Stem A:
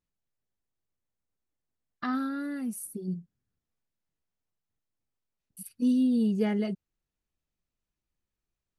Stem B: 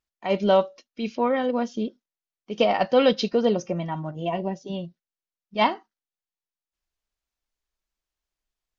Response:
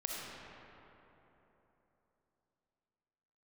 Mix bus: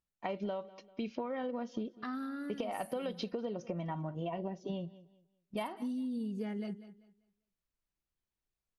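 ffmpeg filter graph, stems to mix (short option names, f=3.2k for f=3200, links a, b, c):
-filter_complex "[0:a]volume=-6.5dB,asplit=2[a][b];[b]volume=-17.5dB[c];[1:a]lowpass=f=2.8k:p=1,agate=range=-8dB:threshold=-49dB:ratio=16:detection=peak,acompressor=threshold=-24dB:ratio=6,volume=-0.5dB,asplit=2[d][e];[e]volume=-24dB[f];[c][f]amix=inputs=2:normalize=0,aecho=0:1:196|392|588|784:1|0.26|0.0676|0.0176[g];[a][d][g]amix=inputs=3:normalize=0,acompressor=threshold=-35dB:ratio=5"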